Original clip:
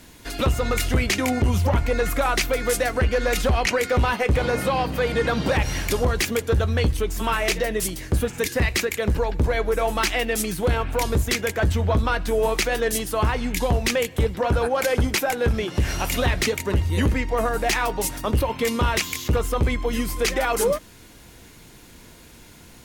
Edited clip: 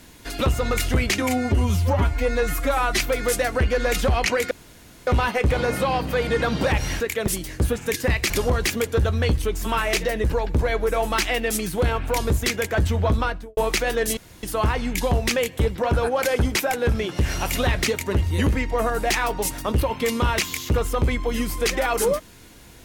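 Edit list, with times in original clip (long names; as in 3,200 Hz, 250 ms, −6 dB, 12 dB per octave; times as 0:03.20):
0:01.22–0:02.40: time-stretch 1.5×
0:03.92: splice in room tone 0.56 s
0:05.85–0:07.79: swap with 0:08.82–0:09.09
0:12.04–0:12.42: fade out and dull
0:13.02: splice in room tone 0.26 s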